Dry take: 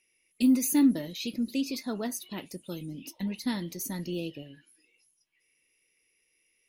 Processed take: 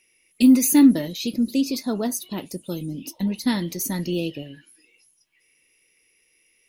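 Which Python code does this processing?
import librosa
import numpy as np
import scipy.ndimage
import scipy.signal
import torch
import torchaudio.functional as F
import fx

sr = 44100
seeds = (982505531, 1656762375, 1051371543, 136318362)

y = fx.peak_eq(x, sr, hz=2100.0, db=-7.0, octaves=1.4, at=(1.08, 3.46))
y = y * 10.0 ** (8.5 / 20.0)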